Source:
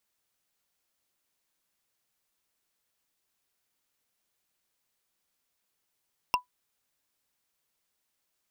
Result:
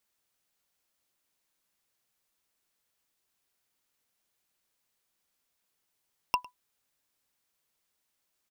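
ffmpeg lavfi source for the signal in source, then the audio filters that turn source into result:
-f lavfi -i "aevalsrc='0.141*pow(10,-3*t/0.12)*sin(2*PI*992*t)+0.1*pow(10,-3*t/0.036)*sin(2*PI*2734.9*t)+0.0708*pow(10,-3*t/0.016)*sin(2*PI*5360.8*t)+0.0501*pow(10,-3*t/0.009)*sin(2*PI*8861.5*t)+0.0355*pow(10,-3*t/0.005)*sin(2*PI*13233.3*t)':d=0.45:s=44100"
-filter_complex "[0:a]asplit=2[a][b];[b]adelay=105,volume=-21dB,highshelf=f=4k:g=-2.36[c];[a][c]amix=inputs=2:normalize=0"

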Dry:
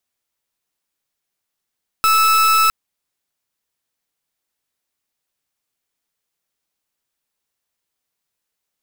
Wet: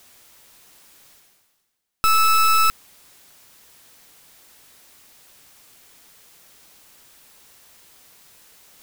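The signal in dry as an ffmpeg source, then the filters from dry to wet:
-f lavfi -i "aevalsrc='0.211*(2*lt(mod(1310*t,1),0.39)-1)':d=0.66:s=44100"
-af "areverse,acompressor=mode=upward:threshold=-28dB:ratio=2.5,areverse,aeval=exprs='clip(val(0),-1,0.0794)':c=same"

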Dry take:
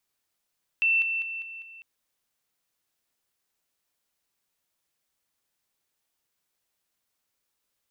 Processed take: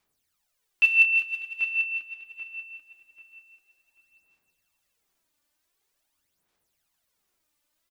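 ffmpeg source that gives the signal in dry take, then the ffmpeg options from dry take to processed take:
-f lavfi -i "aevalsrc='pow(10,(-19.5-6*floor(t/0.2))/20)*sin(2*PI*2680*t)':d=1:s=44100"
-filter_complex "[0:a]aphaser=in_gain=1:out_gain=1:delay=3.4:decay=0.67:speed=0.46:type=sinusoidal,asplit=2[a][b];[b]adelay=788,lowpass=f=2.6k:p=1,volume=-5dB,asplit=2[c][d];[d]adelay=788,lowpass=f=2.6k:p=1,volume=0.34,asplit=2[e][f];[f]adelay=788,lowpass=f=2.6k:p=1,volume=0.34,asplit=2[g][h];[h]adelay=788,lowpass=f=2.6k:p=1,volume=0.34[i];[c][e][g][i]amix=inputs=4:normalize=0[j];[a][j]amix=inputs=2:normalize=0"

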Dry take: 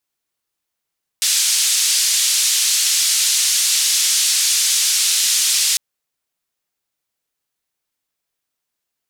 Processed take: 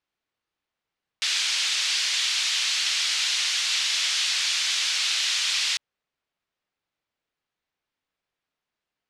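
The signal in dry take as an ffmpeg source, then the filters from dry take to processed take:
-f lavfi -i "anoisesrc=c=white:d=4.55:r=44100:seed=1,highpass=f=3800,lowpass=f=8000,volume=-4.6dB"
-af "lowpass=3.4k"

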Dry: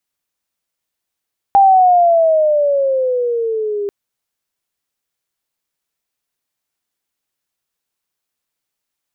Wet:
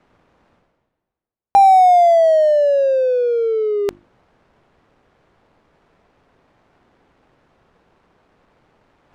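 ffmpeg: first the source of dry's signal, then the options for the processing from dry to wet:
-f lavfi -i "aevalsrc='pow(10,(-5-12.5*t/2.34)/20)*sin(2*PI*800*2.34/log(400/800)*(exp(log(400/800)*t/2.34)-1))':d=2.34:s=44100"
-af "areverse,acompressor=mode=upward:threshold=-16dB:ratio=2.5,areverse,bandreject=f=50:t=h:w=6,bandreject=f=100:t=h:w=6,bandreject=f=150:t=h:w=6,bandreject=f=200:t=h:w=6,bandreject=f=250:t=h:w=6,bandreject=f=300:t=h:w=6,bandreject=f=350:t=h:w=6,adynamicsmooth=sensitivity=3.5:basefreq=870"

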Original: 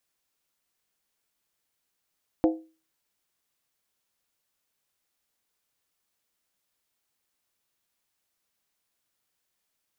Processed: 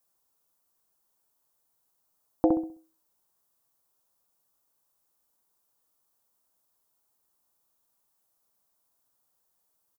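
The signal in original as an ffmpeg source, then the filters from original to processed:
-f lavfi -i "aevalsrc='0.168*pow(10,-3*t/0.34)*sin(2*PI*321*t)+0.0891*pow(10,-3*t/0.269)*sin(2*PI*511.7*t)+0.0473*pow(10,-3*t/0.233)*sin(2*PI*685.7*t)+0.0251*pow(10,-3*t/0.224)*sin(2*PI*737*t)+0.0133*pow(10,-3*t/0.209)*sin(2*PI*851.6*t)':d=0.63:s=44100"
-filter_complex "[0:a]highshelf=f=1.5k:t=q:w=1.5:g=-13,crystalizer=i=5:c=0,asplit=2[a][b];[b]adelay=65,lowpass=f=1.3k:p=1,volume=-4dB,asplit=2[c][d];[d]adelay=65,lowpass=f=1.3k:p=1,volume=0.36,asplit=2[e][f];[f]adelay=65,lowpass=f=1.3k:p=1,volume=0.36,asplit=2[g][h];[h]adelay=65,lowpass=f=1.3k:p=1,volume=0.36,asplit=2[i][j];[j]adelay=65,lowpass=f=1.3k:p=1,volume=0.36[k];[c][e][g][i][k]amix=inputs=5:normalize=0[l];[a][l]amix=inputs=2:normalize=0"

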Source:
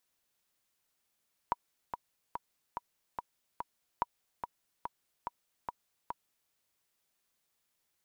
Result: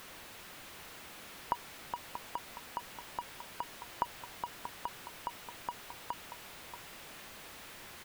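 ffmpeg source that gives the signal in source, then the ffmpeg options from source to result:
-f lavfi -i "aevalsrc='pow(10,(-16-7.5*gte(mod(t,6*60/144),60/144))/20)*sin(2*PI*962*mod(t,60/144))*exp(-6.91*mod(t,60/144)/0.03)':d=5:s=44100"
-filter_complex "[0:a]aeval=exprs='val(0)+0.5*0.0133*sgn(val(0))':c=same,acrossover=split=3500[a][b];[b]acompressor=threshold=-55dB:ratio=4:attack=1:release=60[c];[a][c]amix=inputs=2:normalize=0,asplit=2[d][e];[e]aecho=0:1:633:0.299[f];[d][f]amix=inputs=2:normalize=0"

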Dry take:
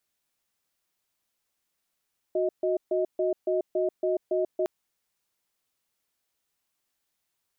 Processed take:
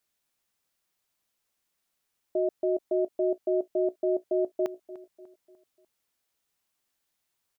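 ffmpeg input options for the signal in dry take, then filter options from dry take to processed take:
-f lavfi -i "aevalsrc='0.0531*(sin(2*PI*367*t)+sin(2*PI*628*t))*clip(min(mod(t,0.28),0.14-mod(t,0.28))/0.005,0,1)':d=2.31:s=44100"
-filter_complex "[0:a]asplit=2[a][b];[b]adelay=297,lowpass=f=1.5k:p=1,volume=-16dB,asplit=2[c][d];[d]adelay=297,lowpass=f=1.5k:p=1,volume=0.47,asplit=2[e][f];[f]adelay=297,lowpass=f=1.5k:p=1,volume=0.47,asplit=2[g][h];[h]adelay=297,lowpass=f=1.5k:p=1,volume=0.47[i];[a][c][e][g][i]amix=inputs=5:normalize=0"

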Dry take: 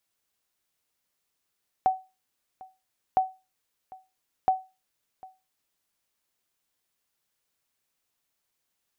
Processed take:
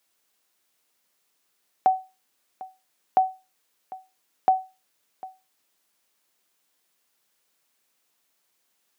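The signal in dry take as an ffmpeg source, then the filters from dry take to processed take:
-f lavfi -i "aevalsrc='0.2*(sin(2*PI*754*mod(t,1.31))*exp(-6.91*mod(t,1.31)/0.27)+0.0708*sin(2*PI*754*max(mod(t,1.31)-0.75,0))*exp(-6.91*max(mod(t,1.31)-0.75,0)/0.27))':d=3.93:s=44100"
-filter_complex "[0:a]highpass=190,asplit=2[a][b];[b]alimiter=limit=-22.5dB:level=0:latency=1:release=89,volume=3dB[c];[a][c]amix=inputs=2:normalize=0"

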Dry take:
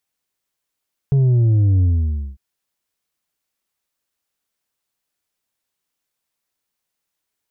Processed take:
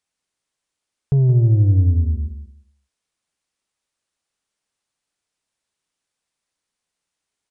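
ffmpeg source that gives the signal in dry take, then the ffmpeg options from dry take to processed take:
-f lavfi -i "aevalsrc='0.251*clip((1.25-t)/0.55,0,1)*tanh(1.68*sin(2*PI*140*1.25/log(65/140)*(exp(log(65/140)*t/1.25)-1)))/tanh(1.68)':d=1.25:s=44100"
-filter_complex "[0:a]aresample=22050,aresample=44100,asplit=2[a][b];[b]aecho=0:1:174|348|522:0.355|0.0674|0.0128[c];[a][c]amix=inputs=2:normalize=0"

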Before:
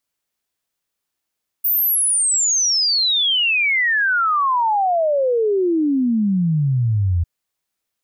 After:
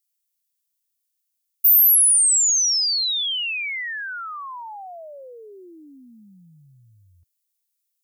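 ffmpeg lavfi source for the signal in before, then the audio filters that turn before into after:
-f lavfi -i "aevalsrc='0.188*clip(min(t,5.6-t)/0.01,0,1)*sin(2*PI*15000*5.6/log(82/15000)*(exp(log(82/15000)*t/5.6)-1))':d=5.6:s=44100"
-af "aderivative"

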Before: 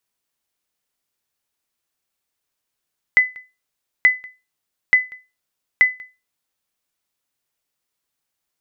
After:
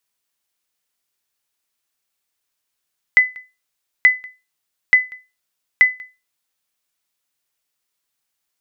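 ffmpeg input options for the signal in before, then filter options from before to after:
-f lavfi -i "aevalsrc='0.596*(sin(2*PI*2010*mod(t,0.88))*exp(-6.91*mod(t,0.88)/0.26)+0.0531*sin(2*PI*2010*max(mod(t,0.88)-0.19,0))*exp(-6.91*max(mod(t,0.88)-0.19,0)/0.26))':d=3.52:s=44100"
-af "tiltshelf=f=970:g=-3"

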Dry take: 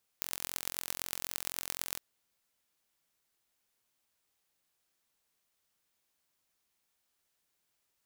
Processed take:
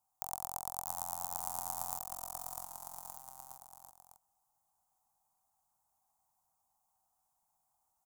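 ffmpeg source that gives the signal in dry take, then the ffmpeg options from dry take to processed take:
-f lavfi -i "aevalsrc='0.531*eq(mod(n,1005),0)*(0.5+0.5*eq(mod(n,5025),0))':d=1.76:s=44100"
-af "firequalizer=gain_entry='entry(110,0);entry(370,-14);entry(550,-11);entry(770,14);entry(1700,-18);entry(2700,-23);entry(7000,-3)':delay=0.05:min_phase=1,aecho=1:1:650|1170|1586|1919|2185:0.631|0.398|0.251|0.158|0.1"

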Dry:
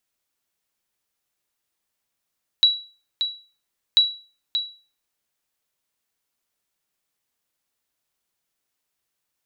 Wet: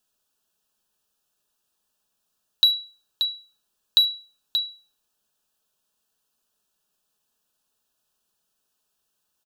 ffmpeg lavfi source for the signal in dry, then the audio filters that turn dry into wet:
-f lavfi -i "aevalsrc='0.398*(sin(2*PI*3910*mod(t,1.34))*exp(-6.91*mod(t,1.34)/0.37)+0.376*sin(2*PI*3910*max(mod(t,1.34)-0.58,0))*exp(-6.91*max(mod(t,1.34)-0.58,0)/0.37))':d=2.68:s=44100"
-filter_complex "[0:a]asplit=2[a][b];[b]asoftclip=type=hard:threshold=-23dB,volume=-7dB[c];[a][c]amix=inputs=2:normalize=0,asuperstop=centerf=2100:order=4:qfactor=2.7,aecho=1:1:4.7:0.36"

